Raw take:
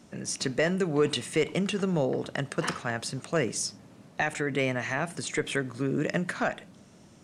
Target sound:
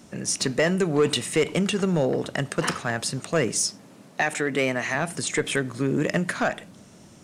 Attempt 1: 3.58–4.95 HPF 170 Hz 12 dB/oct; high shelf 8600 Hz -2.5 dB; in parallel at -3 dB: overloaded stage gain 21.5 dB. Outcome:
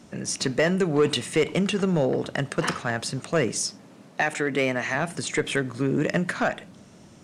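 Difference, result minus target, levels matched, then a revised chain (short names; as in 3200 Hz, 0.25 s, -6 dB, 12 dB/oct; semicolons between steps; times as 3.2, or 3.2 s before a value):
8000 Hz band -3.0 dB
3.58–4.95 HPF 170 Hz 12 dB/oct; high shelf 8600 Hz +7 dB; in parallel at -3 dB: overloaded stage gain 21.5 dB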